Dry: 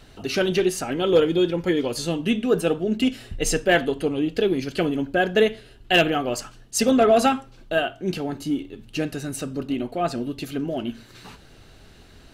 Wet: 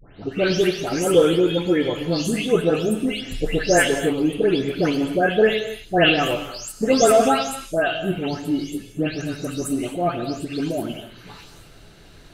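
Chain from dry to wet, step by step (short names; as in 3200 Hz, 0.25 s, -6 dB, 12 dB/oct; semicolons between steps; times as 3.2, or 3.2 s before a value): spectral delay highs late, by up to 0.32 s; non-linear reverb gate 0.29 s flat, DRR 8.5 dB; gain +2.5 dB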